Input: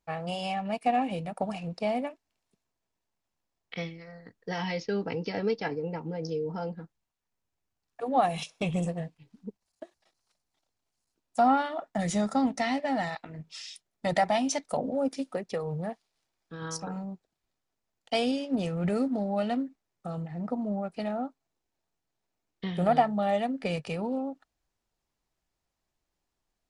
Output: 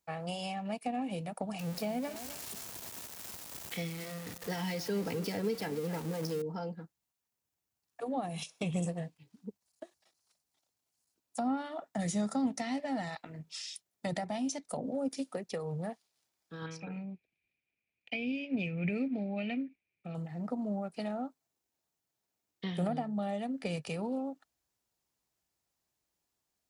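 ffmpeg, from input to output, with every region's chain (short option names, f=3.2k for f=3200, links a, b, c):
-filter_complex "[0:a]asettb=1/sr,asplit=3[a][b][c];[a]atrim=end=1.594[d];[b]atrim=start=1.59:end=6.42,asetpts=PTS-STARTPTS,afade=t=in:d=0.004:c=qsin,afade=t=out:st=4.826:d=0.004:c=qsin,aeval=exprs='val(0)+0.5*0.0158*sgn(val(0))':c=same,aecho=1:1:260:0.158,atrim=end_sample=213003[e];[c]atrim=start=6.416[f];[d][e]acrossfade=d=0.004:c1=hsin:c2=qsin[g];[g][f]acrossfade=d=0.004:c1=qsin:c2=hsin,asettb=1/sr,asplit=3[h][i][j];[h]atrim=end=16.664[k];[i]atrim=start=16.66:end=20.15,asetpts=PTS-STARTPTS,afade=t=in:d=0.004:c=qsin,afade=t=out:st=3.486:d=0.004:c=qsin,lowpass=f=2.4k:t=q:w=14,equalizer=f=1.1k:w=0.94:g=-14.5[l];[j]atrim=start=20.146[m];[k][l]acrossfade=d=0.004:c1=hsin:c2=qsin[n];[n][m]acrossfade=d=0.004:c1=qsin:c2=hsin,highpass=70,highshelf=f=6.1k:g=11,acrossover=split=380[o][p];[p]acompressor=threshold=-33dB:ratio=10[q];[o][q]amix=inputs=2:normalize=0,volume=-3.5dB"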